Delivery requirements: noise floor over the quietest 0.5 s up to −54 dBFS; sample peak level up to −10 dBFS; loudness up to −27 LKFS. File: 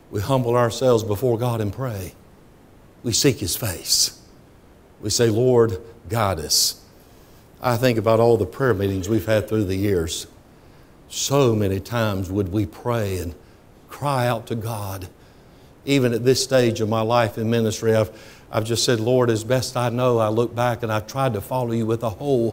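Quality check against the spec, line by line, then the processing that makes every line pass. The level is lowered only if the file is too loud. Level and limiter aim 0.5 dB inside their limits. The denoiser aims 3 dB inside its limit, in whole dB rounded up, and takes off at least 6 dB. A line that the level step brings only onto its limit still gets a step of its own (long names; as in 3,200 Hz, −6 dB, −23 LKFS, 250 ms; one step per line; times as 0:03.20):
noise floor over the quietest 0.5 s −49 dBFS: out of spec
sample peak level −4.5 dBFS: out of spec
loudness −21.0 LKFS: out of spec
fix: level −6.5 dB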